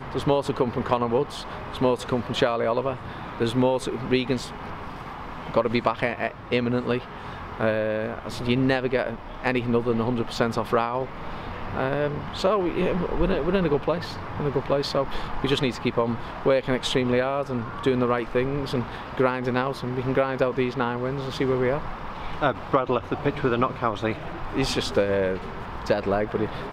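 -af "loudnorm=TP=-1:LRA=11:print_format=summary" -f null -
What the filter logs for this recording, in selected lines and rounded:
Input Integrated:    -25.6 LUFS
Input True Peak:      -7.0 dBTP
Input LRA:             1.5 LU
Input Threshold:     -35.8 LUFS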